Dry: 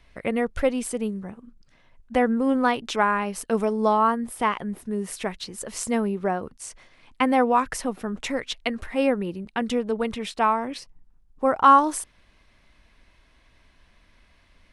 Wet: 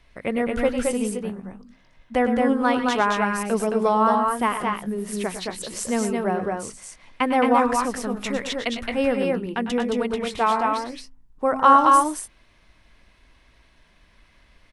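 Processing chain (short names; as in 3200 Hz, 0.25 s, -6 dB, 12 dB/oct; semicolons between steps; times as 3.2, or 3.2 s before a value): de-hum 65.47 Hz, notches 4; on a send: tapped delay 0.101/0.117/0.219/0.239 s -12/-12/-3/-11.5 dB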